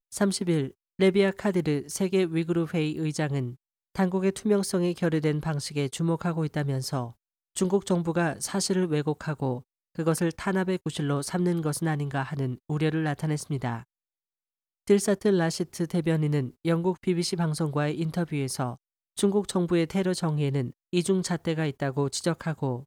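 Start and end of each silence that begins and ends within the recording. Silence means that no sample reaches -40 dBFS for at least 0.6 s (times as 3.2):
13.82–14.87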